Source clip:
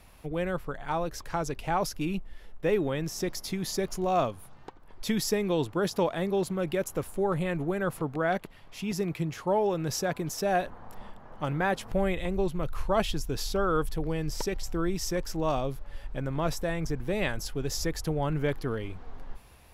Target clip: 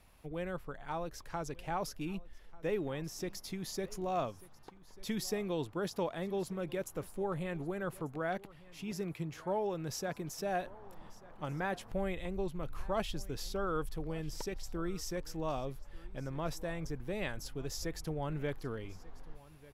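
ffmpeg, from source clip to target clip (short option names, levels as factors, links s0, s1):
-af "aecho=1:1:1191:0.0891,volume=0.376"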